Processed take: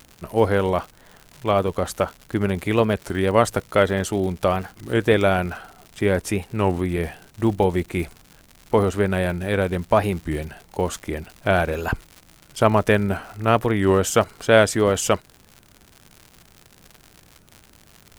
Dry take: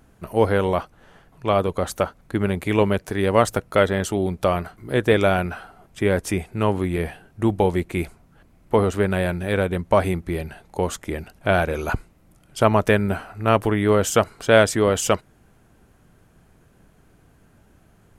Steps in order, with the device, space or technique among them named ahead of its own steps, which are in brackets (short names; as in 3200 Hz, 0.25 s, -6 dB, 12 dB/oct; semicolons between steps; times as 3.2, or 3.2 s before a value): warped LP (record warp 33 1/3 rpm, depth 160 cents; crackle 130/s -31 dBFS; white noise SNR 44 dB)